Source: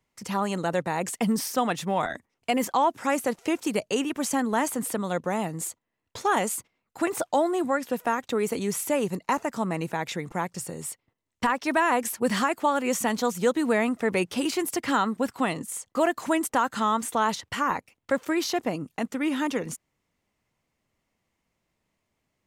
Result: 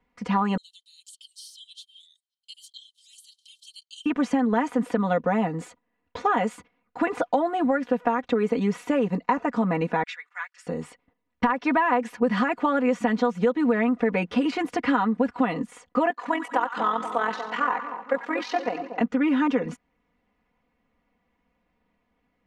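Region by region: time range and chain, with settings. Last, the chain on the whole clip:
0:00.57–0:04.06: Chebyshev high-pass with heavy ripple 3,000 Hz, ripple 9 dB + high-shelf EQ 4,900 Hz +10 dB
0:10.03–0:10.67: Chebyshev high-pass filter 1,500 Hz, order 3 + expander for the loud parts, over −54 dBFS
0:16.10–0:19.01: high-pass filter 420 Hz + amplitude modulation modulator 43 Hz, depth 50% + echo with a time of its own for lows and highs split 1,100 Hz, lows 238 ms, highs 92 ms, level −10 dB
whole clip: low-pass filter 2,300 Hz 12 dB per octave; comb filter 4.1 ms, depth 83%; downward compressor, threshold −23 dBFS; level +4.5 dB

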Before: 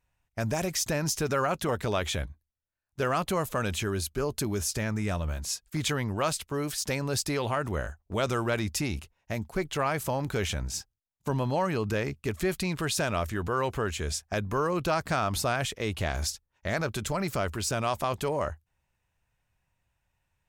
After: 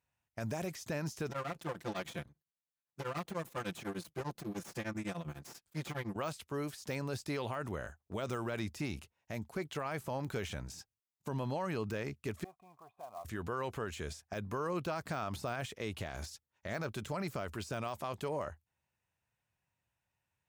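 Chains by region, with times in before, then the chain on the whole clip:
0:01.29–0:06.16: lower of the sound and its delayed copy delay 5.8 ms + tremolo along a rectified sine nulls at 10 Hz
0:12.44–0:13.25: formant resonators in series a + floating-point word with a short mantissa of 2 bits
whole clip: de-essing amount 85%; high-pass filter 95 Hz 12 dB per octave; brickwall limiter −21.5 dBFS; level −6.5 dB

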